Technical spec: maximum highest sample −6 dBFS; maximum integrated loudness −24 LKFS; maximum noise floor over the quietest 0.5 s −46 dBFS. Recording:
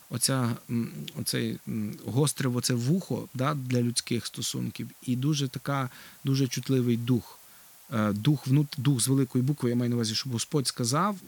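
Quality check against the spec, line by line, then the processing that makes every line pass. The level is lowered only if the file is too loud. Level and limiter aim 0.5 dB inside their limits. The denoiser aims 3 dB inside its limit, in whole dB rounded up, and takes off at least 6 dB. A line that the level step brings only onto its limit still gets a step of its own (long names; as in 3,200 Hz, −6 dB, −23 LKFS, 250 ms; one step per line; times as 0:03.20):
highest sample −11.0 dBFS: in spec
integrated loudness −28.5 LKFS: in spec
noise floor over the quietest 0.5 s −53 dBFS: in spec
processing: no processing needed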